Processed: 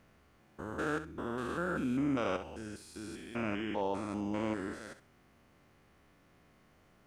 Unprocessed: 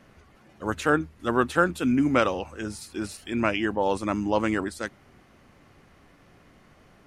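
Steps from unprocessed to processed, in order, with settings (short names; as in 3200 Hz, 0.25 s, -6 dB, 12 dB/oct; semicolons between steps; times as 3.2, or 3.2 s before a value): stepped spectrum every 0.2 s; requantised 12-bit, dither none; thinning echo 65 ms, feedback 18%, level -10.5 dB; gain -8 dB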